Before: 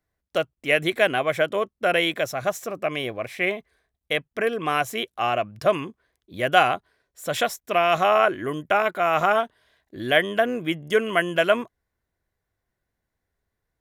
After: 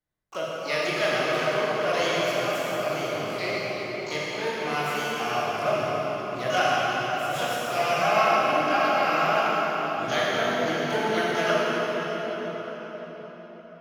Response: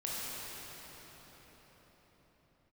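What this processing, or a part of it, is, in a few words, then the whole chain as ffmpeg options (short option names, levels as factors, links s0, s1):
shimmer-style reverb: -filter_complex "[0:a]asettb=1/sr,asplit=3[s0][s1][s2];[s0]atrim=end=8.014[s3];[s1]atrim=start=8.01:end=9.14,asetpts=PTS-STARTPTS,afade=t=in:d=0.004:c=qsin,afade=t=out:st=1.126:d=0.004:c=qsin,aecho=1:1:3.7:0.66,atrim=end_sample=49833[s4];[s2]atrim=start=9.136[s5];[s3][s4]acrossfade=d=0.004:c1=hsin:c2=qsin[s6];[s6][s5]acrossfade=d=0.004:c1=qsin:c2=hsin,asplit=2[s7][s8];[s8]asetrate=88200,aresample=44100,atempo=0.5,volume=0.447[s9];[s7][s9]amix=inputs=2:normalize=0[s10];[1:a]atrim=start_sample=2205[s11];[s10][s11]afir=irnorm=-1:irlink=0,volume=0.422"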